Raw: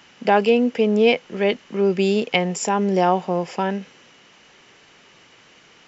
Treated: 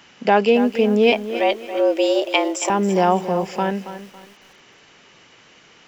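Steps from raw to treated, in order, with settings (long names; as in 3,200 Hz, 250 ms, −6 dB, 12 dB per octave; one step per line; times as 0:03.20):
0:01.12–0:02.70: frequency shifter +150 Hz
feedback echo at a low word length 277 ms, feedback 35%, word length 7 bits, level −12 dB
level +1 dB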